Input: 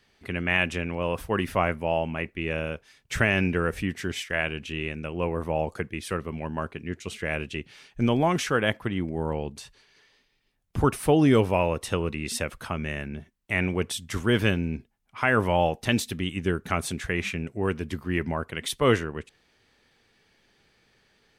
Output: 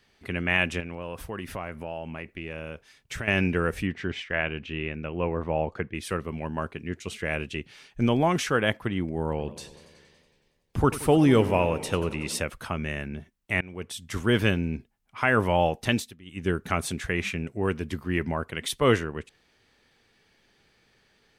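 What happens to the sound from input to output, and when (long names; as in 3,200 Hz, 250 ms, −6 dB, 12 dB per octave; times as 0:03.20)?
0:00.80–0:03.28: downward compressor 3 to 1, threshold −33 dBFS
0:03.87–0:05.95: low-pass filter 3,200 Hz
0:09.29–0:12.40: feedback echo with a swinging delay time 93 ms, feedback 72%, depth 144 cents, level −16 dB
0:13.61–0:14.26: fade in, from −23 dB
0:15.90–0:16.50: duck −20 dB, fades 0.25 s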